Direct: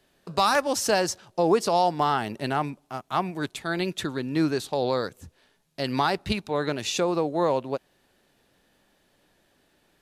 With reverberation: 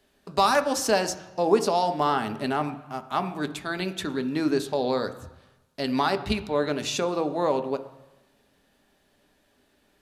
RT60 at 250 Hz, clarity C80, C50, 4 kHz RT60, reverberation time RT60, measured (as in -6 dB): 0.95 s, 15.5 dB, 13.5 dB, 1.1 s, 1.0 s